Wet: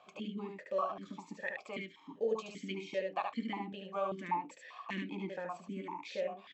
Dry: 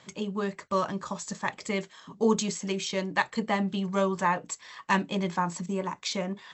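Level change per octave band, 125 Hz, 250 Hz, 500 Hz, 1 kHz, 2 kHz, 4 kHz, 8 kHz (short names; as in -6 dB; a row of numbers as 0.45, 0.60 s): -14.5, -12.5, -7.0, -9.0, -11.5, -13.5, -24.0 dB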